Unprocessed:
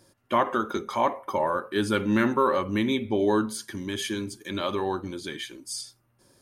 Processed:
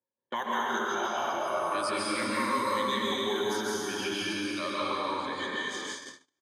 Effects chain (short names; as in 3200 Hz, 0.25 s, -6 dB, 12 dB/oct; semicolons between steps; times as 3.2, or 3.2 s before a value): moving spectral ripple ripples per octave 1, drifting -0.38 Hz, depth 12 dB; in parallel at -0.5 dB: limiter -20.5 dBFS, peak gain reduction 11.5 dB; on the sum: low-pass opened by the level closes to 800 Hz, open at -13.5 dBFS; on a send: echo 73 ms -19.5 dB; on the sum: compressor 1.5:1, threshold -51 dBFS, peak gain reduction 13.5 dB; plate-style reverb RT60 2.8 s, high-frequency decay 0.8×, pre-delay 0.12 s, DRR -7 dB; dynamic EQ 2800 Hz, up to -4 dB, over -42 dBFS, Q 0.97; gate -38 dBFS, range -43 dB; tilt +4.5 dB/oct; three-band squash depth 40%; gain -2 dB